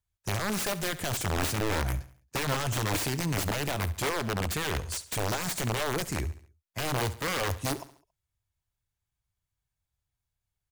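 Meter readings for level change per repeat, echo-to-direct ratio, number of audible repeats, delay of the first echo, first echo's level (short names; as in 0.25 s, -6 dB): -7.0 dB, -15.0 dB, 3, 69 ms, -16.0 dB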